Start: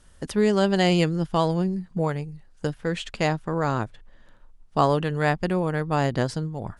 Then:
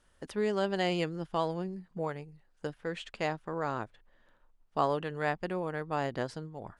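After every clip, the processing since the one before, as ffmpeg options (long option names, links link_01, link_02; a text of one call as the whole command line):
ffmpeg -i in.wav -af "bass=frequency=250:gain=-8,treble=frequency=4000:gain=-6,volume=-7.5dB" out.wav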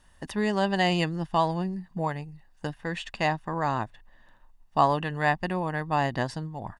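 ffmpeg -i in.wav -af "aecho=1:1:1.1:0.54,volume=6dB" out.wav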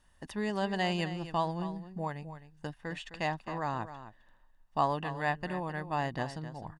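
ffmpeg -i in.wav -af "aecho=1:1:260:0.237,volume=-7dB" out.wav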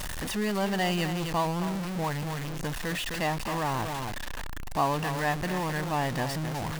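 ffmpeg -i in.wav -af "aeval=exprs='val(0)+0.5*0.0376*sgn(val(0))':channel_layout=same" out.wav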